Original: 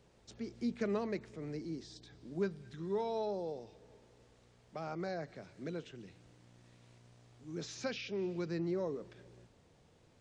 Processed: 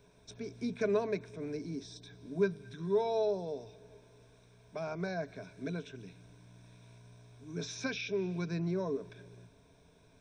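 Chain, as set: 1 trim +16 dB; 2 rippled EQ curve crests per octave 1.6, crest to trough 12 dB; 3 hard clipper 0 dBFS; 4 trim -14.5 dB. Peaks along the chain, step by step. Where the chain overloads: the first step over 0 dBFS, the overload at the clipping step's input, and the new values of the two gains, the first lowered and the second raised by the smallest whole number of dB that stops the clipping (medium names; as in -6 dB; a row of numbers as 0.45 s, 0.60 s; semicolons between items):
-7.5 dBFS, -4.0 dBFS, -4.0 dBFS, -18.5 dBFS; nothing clips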